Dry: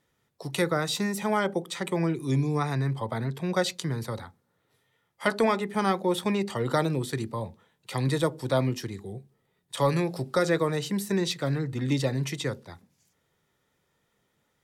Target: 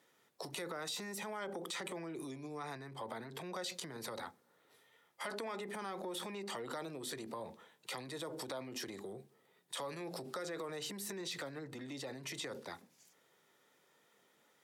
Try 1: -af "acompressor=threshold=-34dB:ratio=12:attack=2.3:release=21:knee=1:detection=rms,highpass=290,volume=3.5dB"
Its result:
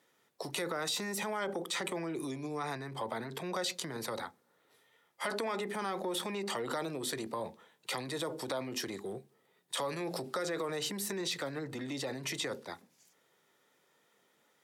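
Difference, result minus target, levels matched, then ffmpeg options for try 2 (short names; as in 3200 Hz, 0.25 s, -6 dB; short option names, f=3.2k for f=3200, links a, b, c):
compressor: peak gain reduction -7 dB
-af "acompressor=threshold=-41.5dB:ratio=12:attack=2.3:release=21:knee=1:detection=rms,highpass=290,volume=3.5dB"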